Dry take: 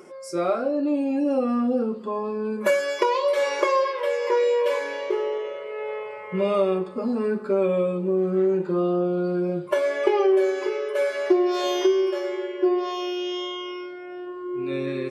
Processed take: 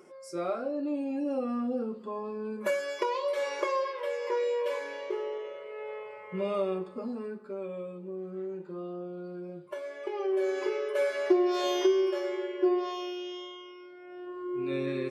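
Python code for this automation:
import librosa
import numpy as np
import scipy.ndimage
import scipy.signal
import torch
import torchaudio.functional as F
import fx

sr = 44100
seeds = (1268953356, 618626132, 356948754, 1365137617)

y = fx.gain(x, sr, db=fx.line((6.97, -8.5), (7.41, -16.0), (10.06, -16.0), (10.58, -4.5), (12.73, -4.5), (13.76, -15.0), (14.4, -4.0)))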